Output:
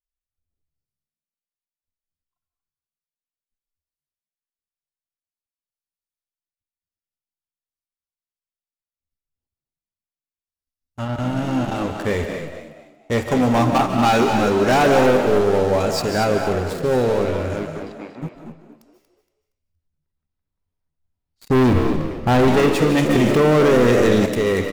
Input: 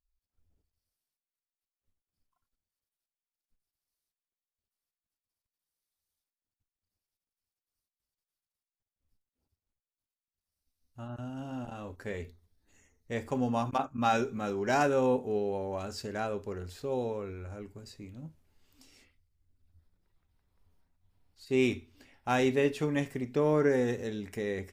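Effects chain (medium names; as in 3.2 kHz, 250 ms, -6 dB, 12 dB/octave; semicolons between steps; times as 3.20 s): 21.49–22.48 s: tilt EQ -4 dB/octave; waveshaping leveller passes 5; 17.72–18.22 s: band-pass 300–2400 Hz; frequency-shifting echo 234 ms, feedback 31%, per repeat +67 Hz, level -9 dB; reverberation RT60 0.65 s, pre-delay 110 ms, DRR 6.5 dB; 23.09–24.26 s: level flattener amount 70%; trim -2 dB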